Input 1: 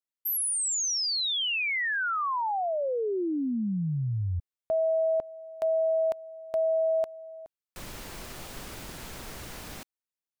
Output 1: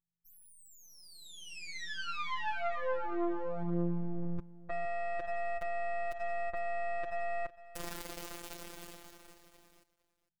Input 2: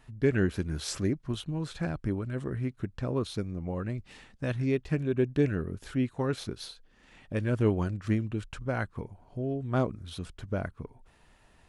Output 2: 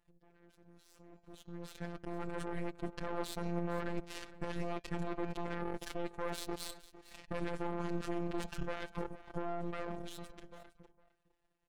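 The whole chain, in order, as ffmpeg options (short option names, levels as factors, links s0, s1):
-filter_complex "[0:a]aeval=exprs='if(lt(val(0),0),0.251*val(0),val(0))':c=same,equalizer=f=440:w=0.8:g=7.5,bandreject=f=218.9:t=h:w=4,bandreject=f=437.8:t=h:w=4,bandreject=f=656.7:t=h:w=4,bandreject=f=875.6:t=h:w=4,bandreject=f=1094.5:t=h:w=4,bandreject=f=1313.4:t=h:w=4,bandreject=f=1532.3:t=h:w=4,bandreject=f=1751.2:t=h:w=4,bandreject=f=1970.1:t=h:w=4,bandreject=f=2189:t=h:w=4,bandreject=f=2407.9:t=h:w=4,bandreject=f=2626.8:t=h:w=4,bandreject=f=2845.7:t=h:w=4,bandreject=f=3064.6:t=h:w=4,bandreject=f=3283.5:t=h:w=4,bandreject=f=3502.4:t=h:w=4,bandreject=f=3721.3:t=h:w=4,bandreject=f=3940.2:t=h:w=4,bandreject=f=4159.1:t=h:w=4,bandreject=f=4378:t=h:w=4,bandreject=f=4596.9:t=h:w=4,bandreject=f=4815.8:t=h:w=4,bandreject=f=5034.7:t=h:w=4,bandreject=f=5253.6:t=h:w=4,bandreject=f=5472.5:t=h:w=4,bandreject=f=5691.4:t=h:w=4,bandreject=f=5910.3:t=h:w=4,bandreject=f=6129.2:t=h:w=4,bandreject=f=6348.1:t=h:w=4,bandreject=f=6567:t=h:w=4,bandreject=f=6785.9:t=h:w=4,bandreject=f=7004.8:t=h:w=4,bandreject=f=7223.7:t=h:w=4,areverse,acompressor=threshold=0.0126:ratio=5:attack=0.62:release=42:knee=1:detection=rms,areverse,alimiter=level_in=7.08:limit=0.0631:level=0:latency=1:release=185,volume=0.141,dynaudnorm=f=190:g=17:m=3.16,aeval=exprs='val(0)+0.000355*(sin(2*PI*50*n/s)+sin(2*PI*2*50*n/s)/2+sin(2*PI*3*50*n/s)/3+sin(2*PI*4*50*n/s)/4+sin(2*PI*5*50*n/s)/5)':c=same,aeval=exprs='0.0299*(cos(1*acos(clip(val(0)/0.0299,-1,1)))-cos(1*PI/2))+0.00944*(cos(3*acos(clip(val(0)/0.0299,-1,1)))-cos(3*PI/2))':c=same,afftfilt=real='hypot(re,im)*cos(PI*b)':imag='0':win_size=1024:overlap=0.75,asplit=2[s0][s1];[s1]aecho=0:1:456:0.141[s2];[s0][s2]amix=inputs=2:normalize=0,volume=2.37"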